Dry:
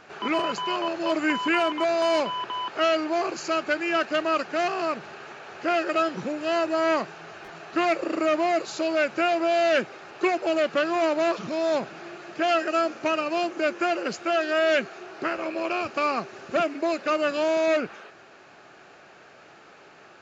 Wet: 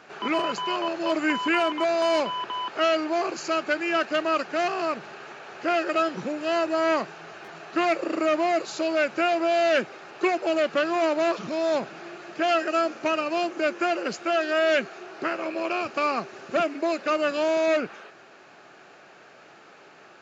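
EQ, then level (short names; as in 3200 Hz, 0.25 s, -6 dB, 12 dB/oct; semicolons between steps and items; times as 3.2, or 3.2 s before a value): HPF 120 Hz; 0.0 dB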